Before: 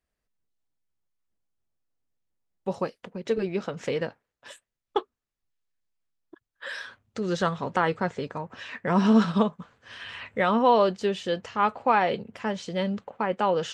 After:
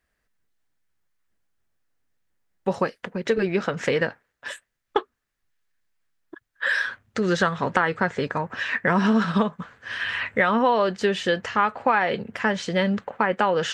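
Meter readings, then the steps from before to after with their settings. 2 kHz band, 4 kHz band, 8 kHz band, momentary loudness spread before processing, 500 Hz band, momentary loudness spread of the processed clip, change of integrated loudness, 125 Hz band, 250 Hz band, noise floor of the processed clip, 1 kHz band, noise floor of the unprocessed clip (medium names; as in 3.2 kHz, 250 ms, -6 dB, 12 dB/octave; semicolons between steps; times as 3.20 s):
+9.5 dB, +5.0 dB, +6.0 dB, 17 LU, +2.5 dB, 9 LU, +2.5 dB, +3.0 dB, +1.5 dB, -78 dBFS, +2.0 dB, under -85 dBFS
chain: peaking EQ 1.7 kHz +8.5 dB 0.79 oct; compression 4:1, threshold -24 dBFS, peak gain reduction 9.5 dB; trim +6.5 dB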